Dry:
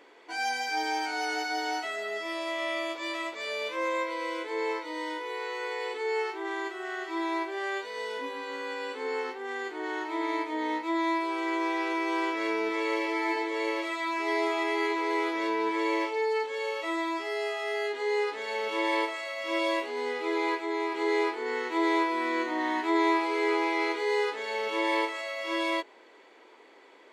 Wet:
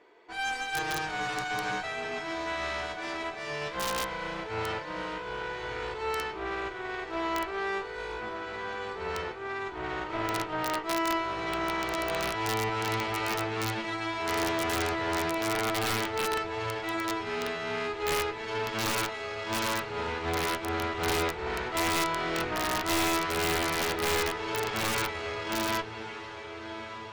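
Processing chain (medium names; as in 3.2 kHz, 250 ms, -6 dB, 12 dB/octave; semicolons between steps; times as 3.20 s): low-pass 8.5 kHz 12 dB/octave; treble shelf 2.1 kHz -6.5 dB; Chebyshev shaper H 6 -8 dB, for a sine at -15.5 dBFS; comb of notches 270 Hz; echo that smears into a reverb 1245 ms, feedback 40%, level -11 dB; valve stage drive 19 dB, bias 0.6; integer overflow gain 22.5 dB; trim +1.5 dB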